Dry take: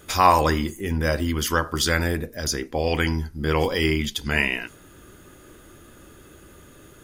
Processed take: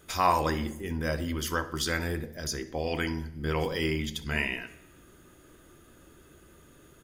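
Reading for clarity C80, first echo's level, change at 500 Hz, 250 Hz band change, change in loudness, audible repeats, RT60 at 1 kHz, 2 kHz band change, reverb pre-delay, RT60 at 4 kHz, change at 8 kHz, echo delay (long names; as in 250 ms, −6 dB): 18.0 dB, −18.5 dB, −7.5 dB, −7.0 dB, −7.5 dB, 2, 0.85 s, −7.5 dB, 3 ms, 0.85 s, −8.0 dB, 63 ms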